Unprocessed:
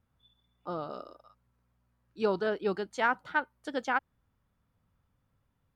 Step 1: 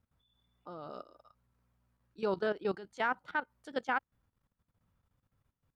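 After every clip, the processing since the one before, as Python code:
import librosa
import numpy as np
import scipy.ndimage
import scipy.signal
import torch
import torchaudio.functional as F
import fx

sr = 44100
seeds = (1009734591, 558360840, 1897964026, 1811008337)

y = fx.level_steps(x, sr, step_db=15)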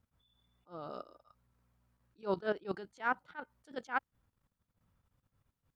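y = fx.attack_slew(x, sr, db_per_s=290.0)
y = y * 10.0 ** (1.0 / 20.0)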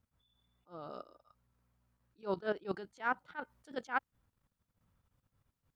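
y = fx.rider(x, sr, range_db=3, speed_s=0.5)
y = y * 10.0 ** (1.0 / 20.0)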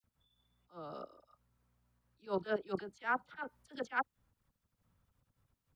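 y = fx.dispersion(x, sr, late='lows', ms=40.0, hz=1800.0)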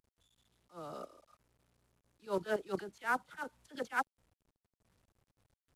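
y = fx.cvsd(x, sr, bps=64000)
y = fx.doppler_dist(y, sr, depth_ms=0.14)
y = y * 10.0 ** (1.0 / 20.0)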